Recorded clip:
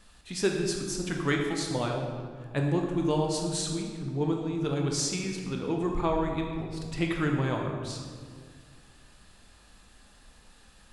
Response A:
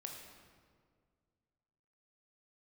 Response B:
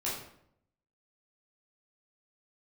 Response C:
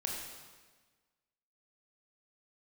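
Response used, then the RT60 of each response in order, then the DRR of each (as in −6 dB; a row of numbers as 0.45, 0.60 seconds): A; 1.9, 0.70, 1.4 seconds; 1.0, −8.0, −1.5 decibels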